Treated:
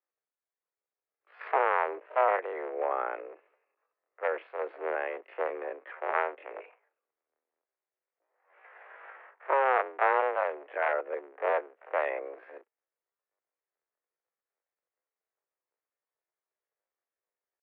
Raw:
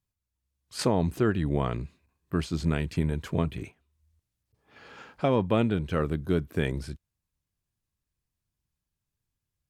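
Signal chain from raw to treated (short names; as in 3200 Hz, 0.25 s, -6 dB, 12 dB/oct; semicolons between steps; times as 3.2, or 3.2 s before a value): cycle switcher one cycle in 2, inverted; tempo 0.55×; mistuned SSB +140 Hz 320–2100 Hz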